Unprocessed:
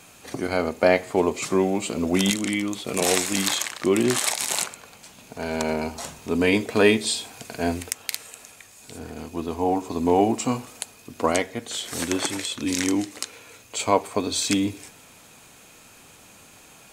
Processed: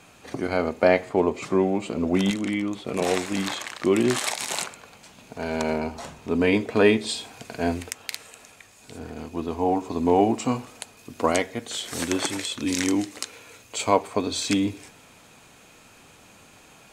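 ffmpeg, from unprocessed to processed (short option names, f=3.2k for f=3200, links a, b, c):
-af "asetnsamples=n=441:p=0,asendcmd='1.09 lowpass f 1800;3.67 lowpass f 4600;5.78 lowpass f 2500;7.09 lowpass f 4300;10.97 lowpass f 9700;13.96 lowpass f 4800',lowpass=f=3.4k:p=1"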